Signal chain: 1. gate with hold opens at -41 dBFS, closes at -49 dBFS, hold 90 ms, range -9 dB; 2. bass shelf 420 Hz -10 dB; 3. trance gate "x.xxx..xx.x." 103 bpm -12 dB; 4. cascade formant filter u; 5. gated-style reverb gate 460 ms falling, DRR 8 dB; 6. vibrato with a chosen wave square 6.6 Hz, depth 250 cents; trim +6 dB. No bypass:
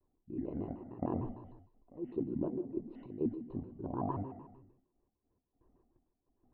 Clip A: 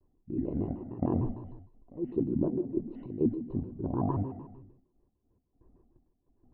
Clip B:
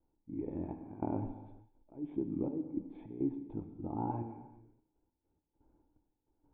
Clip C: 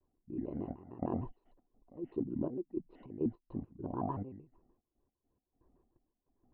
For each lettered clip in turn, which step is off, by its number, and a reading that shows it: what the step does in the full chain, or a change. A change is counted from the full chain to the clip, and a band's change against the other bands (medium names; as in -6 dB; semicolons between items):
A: 2, 1 kHz band -5.0 dB; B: 6, 500 Hz band -3.0 dB; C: 5, momentary loudness spread change -3 LU